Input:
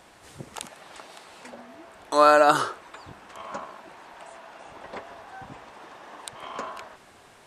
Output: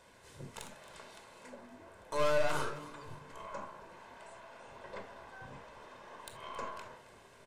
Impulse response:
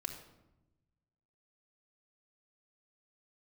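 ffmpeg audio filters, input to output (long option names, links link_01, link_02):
-filter_complex "[0:a]asettb=1/sr,asplit=3[link_01][link_02][link_03];[link_01]atrim=end=1.194[link_04];[link_02]atrim=start=1.19:end=3.92,asetpts=PTS-STARTPTS,afade=type=in:duration=0.004:curve=qsin,afade=type=out:start_time=2.726:duration=0.004:curve=qsin,equalizer=frequency=3600:width_type=o:width=1.7:gain=-3.5[link_05];[link_03]atrim=start=3.916[link_06];[link_04][link_05]acrossfade=duration=0.004:curve1=hsin:curve2=qsin[link_07];[link_07][link_06]acrossfade=duration=0.004:curve1=qsin:curve2=hsin,aeval=exprs='(tanh(15.8*val(0)+0.4)-tanh(0.4))/15.8':channel_layout=same,asplit=6[link_08][link_09][link_10][link_11][link_12][link_13];[link_09]adelay=270,afreqshift=-150,volume=-16dB[link_14];[link_10]adelay=540,afreqshift=-300,volume=-21.2dB[link_15];[link_11]adelay=810,afreqshift=-450,volume=-26.4dB[link_16];[link_12]adelay=1080,afreqshift=-600,volume=-31.6dB[link_17];[link_13]adelay=1350,afreqshift=-750,volume=-36.8dB[link_18];[link_08][link_14][link_15][link_16][link_17][link_18]amix=inputs=6:normalize=0[link_19];[1:a]atrim=start_sample=2205,afade=type=out:start_time=0.18:duration=0.01,atrim=end_sample=8379,asetrate=66150,aresample=44100[link_20];[link_19][link_20]afir=irnorm=-1:irlink=0,volume=-1.5dB"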